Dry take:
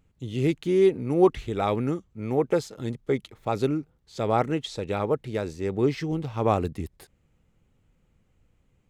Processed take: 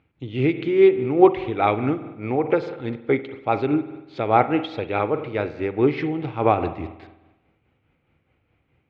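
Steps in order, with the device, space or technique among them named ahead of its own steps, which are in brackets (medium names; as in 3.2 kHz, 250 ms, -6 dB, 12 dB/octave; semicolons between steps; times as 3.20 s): combo amplifier with spring reverb and tremolo (spring tank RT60 1.1 s, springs 47 ms, chirp 45 ms, DRR 10 dB; tremolo 4.8 Hz, depth 41%; cabinet simulation 90–3700 Hz, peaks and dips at 190 Hz -8 dB, 310 Hz +4 dB, 770 Hz +5 dB, 1.4 kHz +4 dB, 2.3 kHz +8 dB); trim +4 dB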